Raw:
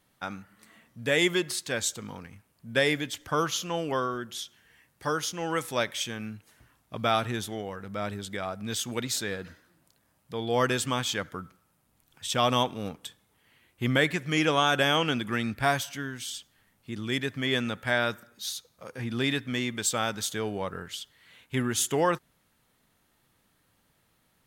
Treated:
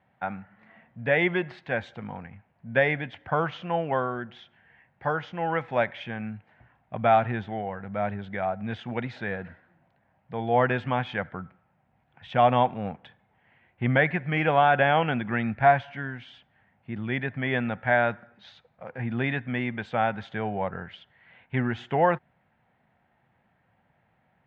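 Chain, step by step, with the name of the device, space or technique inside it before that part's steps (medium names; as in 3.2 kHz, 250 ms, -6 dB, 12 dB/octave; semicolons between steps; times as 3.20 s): bass cabinet (cabinet simulation 79–2200 Hz, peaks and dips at 300 Hz -9 dB, 430 Hz -6 dB, 750 Hz +7 dB, 1.2 kHz -8 dB); trim +4.5 dB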